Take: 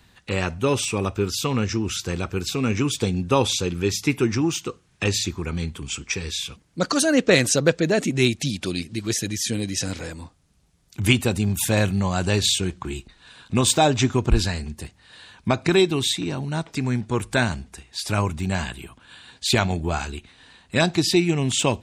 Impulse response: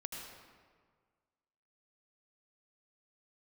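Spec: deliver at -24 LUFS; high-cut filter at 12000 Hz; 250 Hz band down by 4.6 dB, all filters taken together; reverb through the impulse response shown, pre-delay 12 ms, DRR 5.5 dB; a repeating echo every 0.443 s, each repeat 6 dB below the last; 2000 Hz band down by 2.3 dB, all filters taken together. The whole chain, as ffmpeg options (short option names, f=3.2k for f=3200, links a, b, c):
-filter_complex "[0:a]lowpass=12k,equalizer=f=250:t=o:g=-6.5,equalizer=f=2k:t=o:g=-3,aecho=1:1:443|886|1329|1772|2215|2658:0.501|0.251|0.125|0.0626|0.0313|0.0157,asplit=2[a][b];[1:a]atrim=start_sample=2205,adelay=12[c];[b][c]afir=irnorm=-1:irlink=0,volume=-4.5dB[d];[a][d]amix=inputs=2:normalize=0,volume=-1dB"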